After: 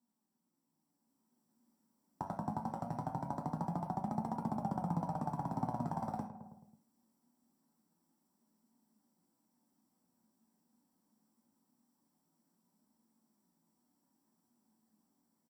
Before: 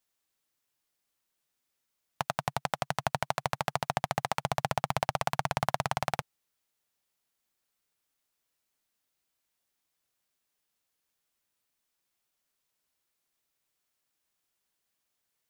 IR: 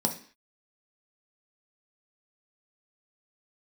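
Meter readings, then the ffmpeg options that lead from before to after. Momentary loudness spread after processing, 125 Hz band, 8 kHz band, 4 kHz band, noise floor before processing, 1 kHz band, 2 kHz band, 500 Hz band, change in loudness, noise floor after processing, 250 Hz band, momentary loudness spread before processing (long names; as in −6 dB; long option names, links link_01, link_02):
7 LU, −3.0 dB, −22.0 dB, below −25 dB, −82 dBFS, −8.0 dB, −24.0 dB, −10.0 dB, −7.0 dB, −83 dBFS, +4.5 dB, 4 LU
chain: -filter_complex "[0:a]flanger=delay=4.1:depth=6.4:regen=74:speed=0.23:shape=triangular,alimiter=limit=-19.5dB:level=0:latency=1:release=12,asplit=2[link_01][link_02];[link_02]adelay=108,lowpass=frequency=1000:poles=1,volume=-13.5dB,asplit=2[link_03][link_04];[link_04]adelay=108,lowpass=frequency=1000:poles=1,volume=0.52,asplit=2[link_05][link_06];[link_06]adelay=108,lowpass=frequency=1000:poles=1,volume=0.52,asplit=2[link_07][link_08];[link_08]adelay=108,lowpass=frequency=1000:poles=1,volume=0.52,asplit=2[link_09][link_10];[link_10]adelay=108,lowpass=frequency=1000:poles=1,volume=0.52[link_11];[link_01][link_03][link_05][link_07][link_09][link_11]amix=inputs=6:normalize=0,acompressor=threshold=-49dB:ratio=3,aeval=exprs='(tanh(79.4*val(0)+0.6)-tanh(0.6))/79.4':channel_layout=same,highshelf=frequency=2000:gain=-8.5,dynaudnorm=framelen=420:gausssize=5:maxgain=7dB,equalizer=frequency=125:width_type=o:width=1:gain=-8,equalizer=frequency=250:width_type=o:width=1:gain=11,equalizer=frequency=500:width_type=o:width=1:gain=-10,equalizer=frequency=2000:width_type=o:width=1:gain=-8,equalizer=frequency=4000:width_type=o:width=1:gain=-10[link_12];[1:a]atrim=start_sample=2205,atrim=end_sample=3969[link_13];[link_12][link_13]afir=irnorm=-1:irlink=0,volume=2.5dB"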